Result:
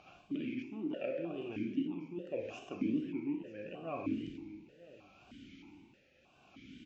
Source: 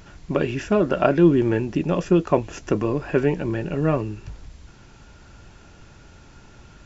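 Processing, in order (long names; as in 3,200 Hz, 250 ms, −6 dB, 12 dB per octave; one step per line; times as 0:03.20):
flat-topped bell 870 Hz −8.5 dB 2.5 octaves
reversed playback
downward compressor 6 to 1, threshold −29 dBFS, peak gain reduction 16 dB
reversed playback
single-tap delay 942 ms −12 dB
amplitude tremolo 0.74 Hz, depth 67%
four-comb reverb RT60 0.76 s, combs from 31 ms, DRR 3 dB
tape wow and flutter 130 cents
formant filter that steps through the vowels 3.2 Hz
level +8.5 dB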